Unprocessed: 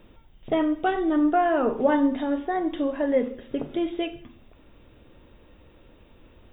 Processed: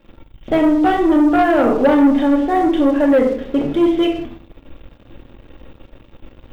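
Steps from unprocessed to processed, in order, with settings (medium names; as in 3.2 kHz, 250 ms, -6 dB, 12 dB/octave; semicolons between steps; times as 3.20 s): simulated room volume 830 m³, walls furnished, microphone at 2.3 m; waveshaping leveller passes 2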